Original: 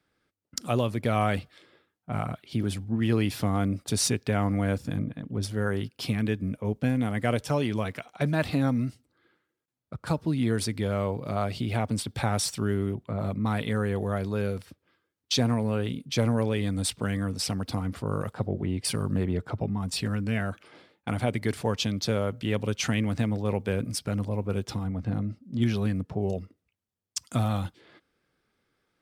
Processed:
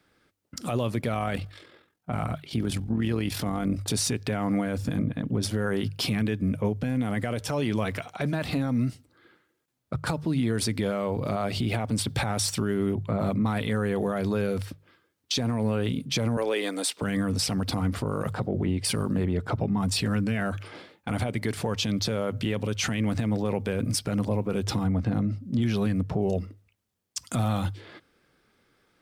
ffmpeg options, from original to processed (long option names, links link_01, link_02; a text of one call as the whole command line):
ffmpeg -i in.wav -filter_complex "[0:a]asplit=3[link_01][link_02][link_03];[link_01]afade=type=out:start_time=1.11:duration=0.02[link_04];[link_02]tremolo=f=43:d=0.571,afade=type=in:start_time=1.11:duration=0.02,afade=type=out:start_time=3.87:duration=0.02[link_05];[link_03]afade=type=in:start_time=3.87:duration=0.02[link_06];[link_04][link_05][link_06]amix=inputs=3:normalize=0,asettb=1/sr,asplit=3[link_07][link_08][link_09];[link_07]atrim=end=16.374[link_10];[link_08]atrim=start=16.37:end=17.02,asetpts=PTS-STARTPTS,afade=type=in:duration=0.004:curve=qsin,afade=type=out:start_time=0.646:duration=0.004:curve=qsin,highpass=frequency=340:width=0.5412,highpass=frequency=340:width=1.3066[link_11];[link_09]atrim=start=17.016[link_12];[link_10][link_11]acrossfade=duration=0.004:curve1=hsin:curve2=qsin[link_13];[link_13][link_12]acrossfade=duration=0.004:curve1=qsin:curve2=hsin,bandreject=frequency=50:width_type=h:width=6,bandreject=frequency=100:width_type=h:width=6,bandreject=frequency=150:width_type=h:width=6,acompressor=threshold=-30dB:ratio=4,alimiter=level_in=2dB:limit=-24dB:level=0:latency=1:release=13,volume=-2dB,volume=8.5dB" out.wav